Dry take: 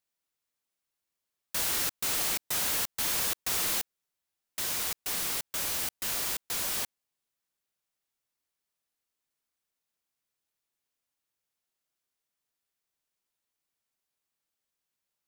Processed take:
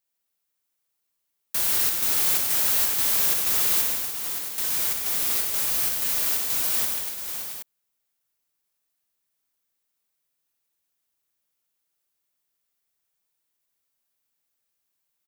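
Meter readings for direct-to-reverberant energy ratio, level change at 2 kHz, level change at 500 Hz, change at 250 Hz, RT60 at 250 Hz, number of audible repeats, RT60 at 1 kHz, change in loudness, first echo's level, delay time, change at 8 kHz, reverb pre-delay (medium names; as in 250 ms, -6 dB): no reverb, +3.0 dB, +3.0 dB, +3.0 dB, no reverb, 6, no reverb, +8.0 dB, -9.0 dB, 61 ms, +6.0 dB, no reverb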